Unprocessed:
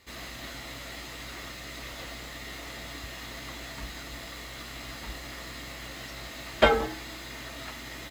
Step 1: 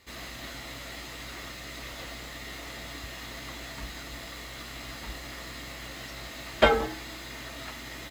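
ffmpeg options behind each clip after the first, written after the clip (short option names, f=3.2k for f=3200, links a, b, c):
-af anull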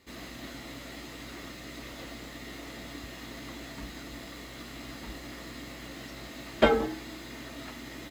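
-af "equalizer=f=270:t=o:w=1.6:g=9,volume=-4.5dB"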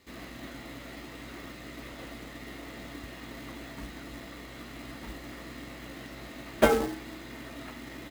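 -filter_complex "[0:a]acrossover=split=3300[a][b];[b]acompressor=threshold=-57dB:ratio=4:attack=1:release=60[c];[a][c]amix=inputs=2:normalize=0,acrusher=bits=3:mode=log:mix=0:aa=0.000001"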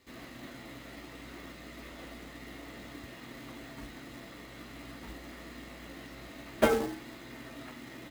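-af "flanger=delay=7.8:depth=4.3:regen=-64:speed=0.27:shape=sinusoidal,volume=1dB"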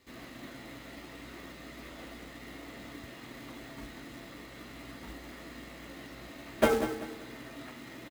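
-af "aecho=1:1:194|388|582|776:0.266|0.0931|0.0326|0.0114"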